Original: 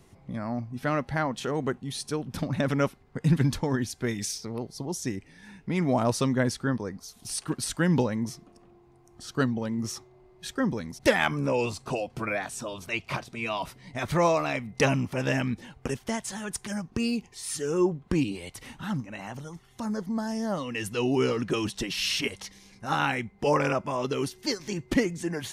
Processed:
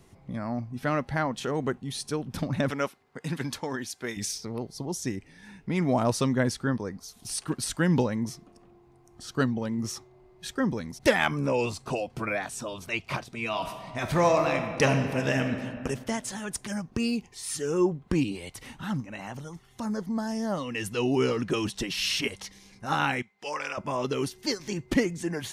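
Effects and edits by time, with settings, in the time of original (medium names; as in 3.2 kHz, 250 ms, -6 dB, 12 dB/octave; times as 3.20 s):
2.70–4.17 s: high-pass 540 Hz 6 dB/octave
13.47–15.57 s: reverb throw, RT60 2.1 s, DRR 5.5 dB
23.22–23.78 s: band-pass filter 3.9 kHz, Q 0.58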